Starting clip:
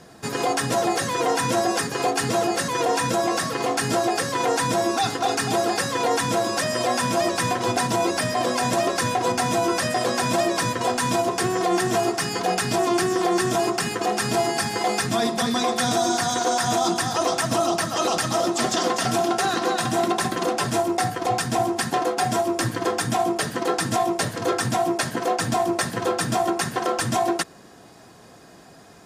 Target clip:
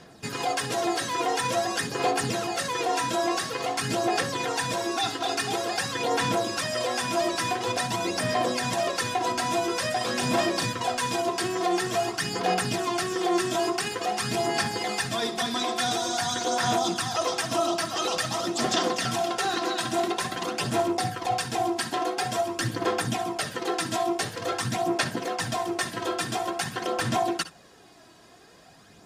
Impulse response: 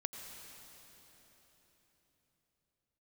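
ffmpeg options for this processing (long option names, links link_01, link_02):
-filter_complex "[0:a]equalizer=frequency=3200:width_type=o:width=1.7:gain=5.5,aphaser=in_gain=1:out_gain=1:delay=3.1:decay=0.41:speed=0.48:type=sinusoidal,asettb=1/sr,asplit=3[link_01][link_02][link_03];[link_01]atrim=end=9.994[link_04];[link_02]atrim=start=9.99:end=10.66,asetpts=PTS-STARTPTS,afade=type=in:duration=0.004:curve=qsin,afade=type=out:start_time=0.666:duration=0.004:curve=qsin,asplit=2[link_05][link_06];[link_06]adelay=36,volume=-6.5dB[link_07];[link_05][link_07]amix=inputs=2:normalize=0,atrim=end_sample=29547[link_08];[link_03]atrim=start=10.656[link_09];[link_04][link_08]acrossfade=duration=0.004:curve1=hsin:curve2=qsin[link_10];[link_10][link_09]acrossfade=duration=0.004:curve1=qsin:curve2=hsin[link_11];[1:a]atrim=start_sample=2205,atrim=end_sample=4410,asetrate=61740,aresample=44100[link_12];[link_11][link_12]afir=irnorm=-1:irlink=0,volume=-2dB"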